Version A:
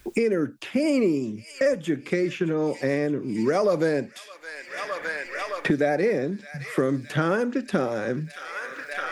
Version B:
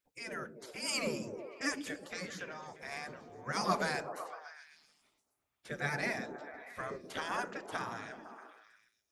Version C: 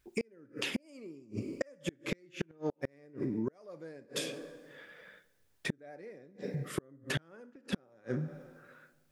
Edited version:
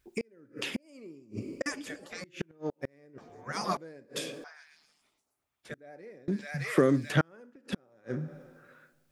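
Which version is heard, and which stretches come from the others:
C
1.66–2.24 s: from B
3.18–3.77 s: from B
4.44–5.74 s: from B
6.28–7.21 s: from A

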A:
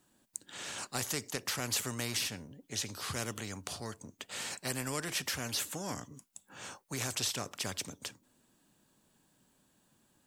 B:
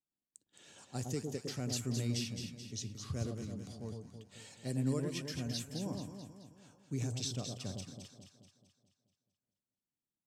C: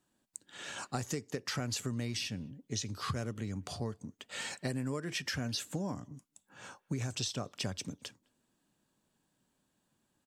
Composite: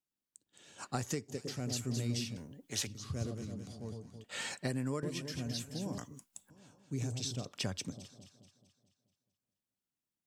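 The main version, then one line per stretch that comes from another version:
B
0.81–1.31 s: from C, crossfade 0.06 s
2.37–2.87 s: from A
4.24–5.03 s: from C
5.98–6.50 s: from A
7.45–7.92 s: from C

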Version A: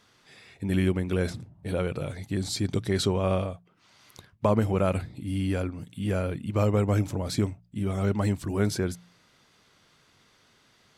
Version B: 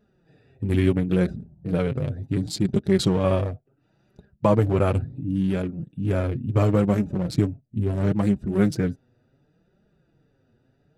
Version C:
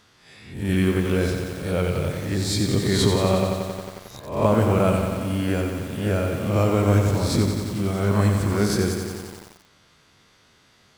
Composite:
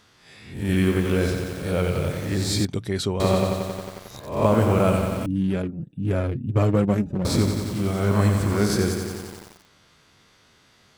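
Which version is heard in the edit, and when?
C
2.65–3.20 s: from A
5.26–7.25 s: from B

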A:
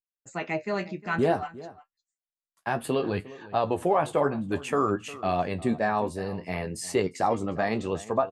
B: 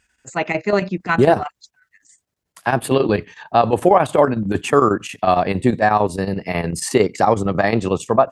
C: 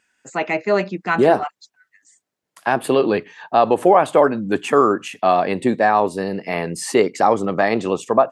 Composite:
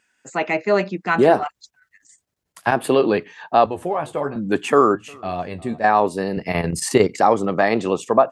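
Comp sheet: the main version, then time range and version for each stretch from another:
C
1.45–2.72 s: from B
3.66–4.36 s: from A
4.95–5.84 s: from A
6.37–7.19 s: from B

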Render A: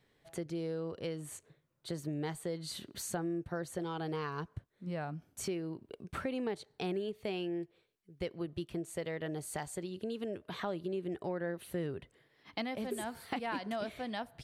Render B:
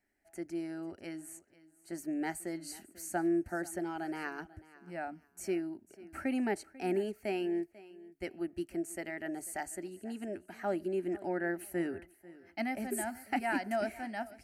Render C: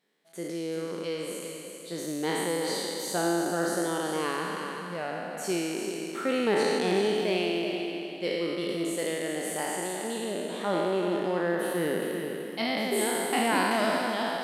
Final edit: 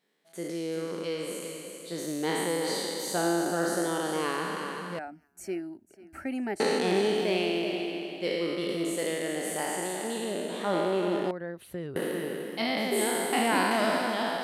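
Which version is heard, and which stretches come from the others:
C
4.99–6.60 s: from B
11.31–11.96 s: from A

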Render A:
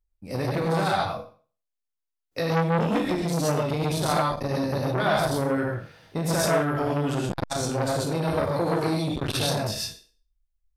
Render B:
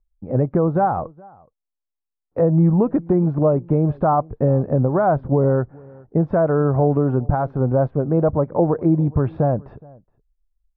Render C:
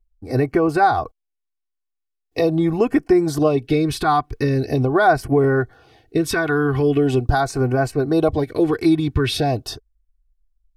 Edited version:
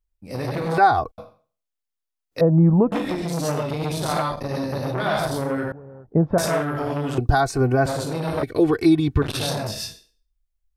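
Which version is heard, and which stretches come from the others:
A
0.78–1.18 s: from C
2.41–2.92 s: from B
5.72–6.38 s: from B
7.18–7.86 s: from C
8.43–9.22 s: from C

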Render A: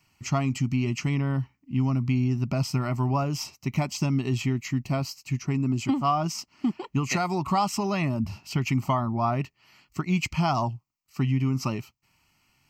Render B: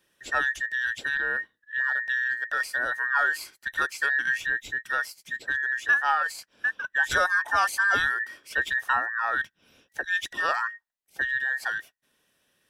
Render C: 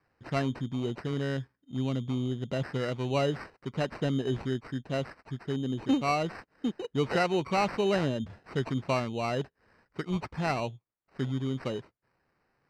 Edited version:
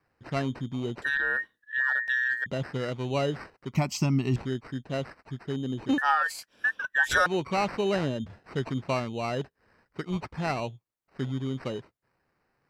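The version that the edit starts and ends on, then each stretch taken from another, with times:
C
1.02–2.46 s: from B
3.75–4.36 s: from A
5.98–7.26 s: from B

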